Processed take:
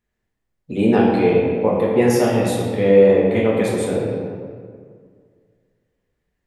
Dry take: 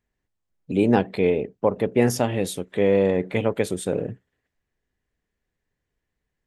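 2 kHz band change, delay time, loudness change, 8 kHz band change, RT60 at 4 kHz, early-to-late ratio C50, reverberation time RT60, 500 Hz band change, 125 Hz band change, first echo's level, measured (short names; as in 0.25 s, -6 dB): +4.5 dB, none, +6.0 dB, +2.0 dB, 1.1 s, 0.0 dB, 2.0 s, +6.5 dB, +4.5 dB, none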